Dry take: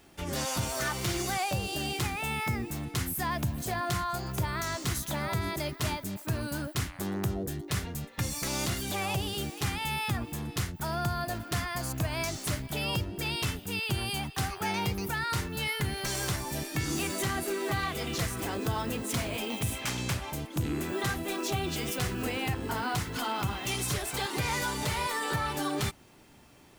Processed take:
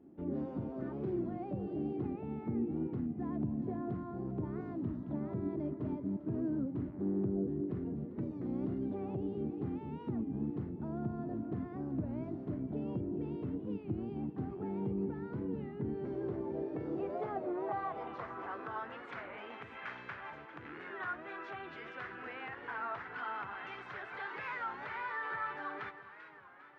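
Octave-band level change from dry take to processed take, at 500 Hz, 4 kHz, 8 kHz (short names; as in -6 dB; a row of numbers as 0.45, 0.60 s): -4.0 dB, under -25 dB, under -40 dB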